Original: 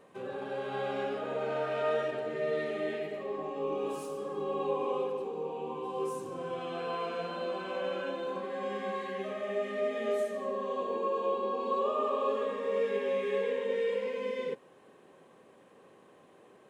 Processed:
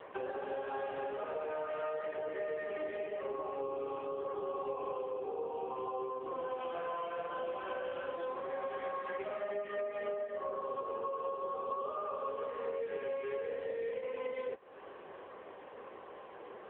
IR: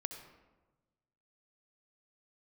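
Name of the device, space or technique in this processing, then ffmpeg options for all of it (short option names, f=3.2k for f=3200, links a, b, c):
voicemail: -af "highpass=430,lowpass=2.8k,acompressor=threshold=-48dB:ratio=8,volume=13dB" -ar 8000 -c:a libopencore_amrnb -b:a 6700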